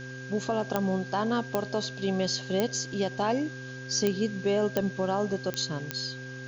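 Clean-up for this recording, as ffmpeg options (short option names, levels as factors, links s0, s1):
-af "adeclick=t=4,bandreject=f=129.2:t=h:w=4,bandreject=f=258.4:t=h:w=4,bandreject=f=387.6:t=h:w=4,bandreject=f=516.8:t=h:w=4,bandreject=f=1600:w=30,afwtdn=0.0035"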